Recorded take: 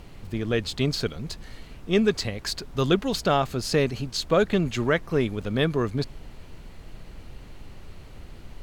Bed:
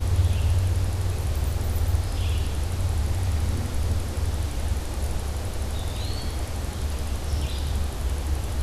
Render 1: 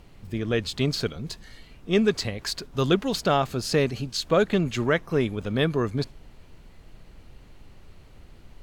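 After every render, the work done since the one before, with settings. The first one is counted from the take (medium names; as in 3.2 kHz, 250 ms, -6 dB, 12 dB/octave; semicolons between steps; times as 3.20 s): noise print and reduce 6 dB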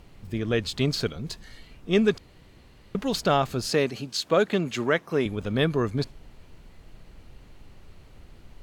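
2.18–2.95 s: room tone; 3.71–5.26 s: Bessel high-pass 200 Hz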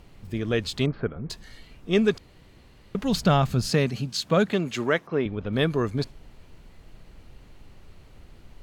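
0.86–1.30 s: low-pass 1.8 kHz 24 dB/octave; 3.03–4.53 s: resonant low shelf 250 Hz +7 dB, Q 1.5; 5.07–5.53 s: distance through air 250 m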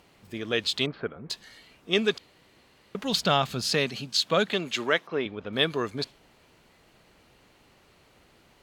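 high-pass 450 Hz 6 dB/octave; dynamic bell 3.5 kHz, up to +7 dB, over -47 dBFS, Q 1.4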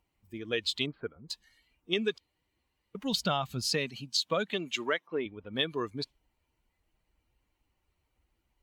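expander on every frequency bin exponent 1.5; compression, threshold -25 dBFS, peak gain reduction 6.5 dB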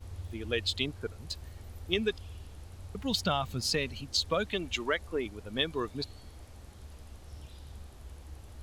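add bed -20.5 dB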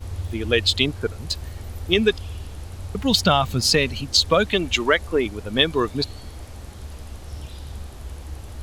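trim +12 dB; peak limiter -2 dBFS, peak gain reduction 2 dB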